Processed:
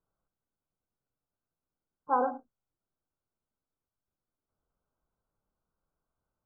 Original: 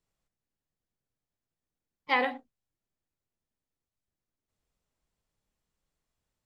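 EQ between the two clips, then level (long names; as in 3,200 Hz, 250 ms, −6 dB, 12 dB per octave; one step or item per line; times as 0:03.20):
linear-phase brick-wall low-pass 1,600 Hz
low-shelf EQ 340 Hz −4.5 dB
+2.5 dB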